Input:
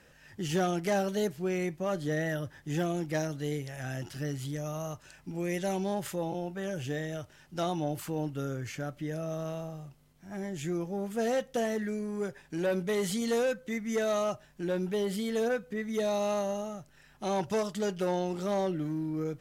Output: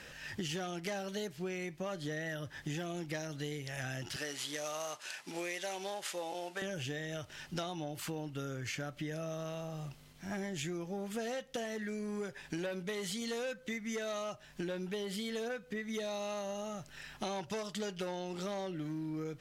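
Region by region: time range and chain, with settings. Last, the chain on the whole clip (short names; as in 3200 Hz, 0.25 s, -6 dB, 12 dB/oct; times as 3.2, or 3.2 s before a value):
4.16–6.62 CVSD 64 kbps + HPF 470 Hz
whole clip: bell 3400 Hz +8 dB 2.5 oct; compressor 12:1, threshold -41 dBFS; gain +5 dB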